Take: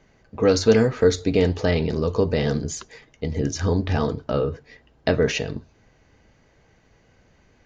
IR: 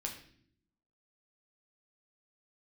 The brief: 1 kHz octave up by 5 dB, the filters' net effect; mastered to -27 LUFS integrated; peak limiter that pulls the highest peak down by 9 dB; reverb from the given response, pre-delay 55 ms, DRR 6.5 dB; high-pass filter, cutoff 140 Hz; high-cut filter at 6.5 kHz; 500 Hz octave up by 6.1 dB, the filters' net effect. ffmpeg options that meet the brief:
-filter_complex "[0:a]highpass=140,lowpass=6500,equalizer=f=500:t=o:g=6,equalizer=f=1000:t=o:g=4.5,alimiter=limit=0.376:level=0:latency=1,asplit=2[s0][s1];[1:a]atrim=start_sample=2205,adelay=55[s2];[s1][s2]afir=irnorm=-1:irlink=0,volume=0.501[s3];[s0][s3]amix=inputs=2:normalize=0,volume=0.473"

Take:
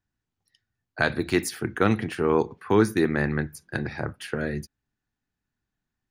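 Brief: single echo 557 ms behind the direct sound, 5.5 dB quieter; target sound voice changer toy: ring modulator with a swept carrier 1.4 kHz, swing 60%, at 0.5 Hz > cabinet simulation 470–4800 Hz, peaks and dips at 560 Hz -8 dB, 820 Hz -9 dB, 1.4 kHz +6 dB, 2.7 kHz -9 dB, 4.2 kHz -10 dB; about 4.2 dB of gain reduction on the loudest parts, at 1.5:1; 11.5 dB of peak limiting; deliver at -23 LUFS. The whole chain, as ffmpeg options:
-af "acompressor=threshold=0.0501:ratio=1.5,alimiter=limit=0.1:level=0:latency=1,aecho=1:1:557:0.531,aeval=exprs='val(0)*sin(2*PI*1400*n/s+1400*0.6/0.5*sin(2*PI*0.5*n/s))':c=same,highpass=470,equalizer=f=560:t=q:w=4:g=-8,equalizer=f=820:t=q:w=4:g=-9,equalizer=f=1400:t=q:w=4:g=6,equalizer=f=2700:t=q:w=4:g=-9,equalizer=f=4200:t=q:w=4:g=-10,lowpass=f=4800:w=0.5412,lowpass=f=4800:w=1.3066,volume=3.98"

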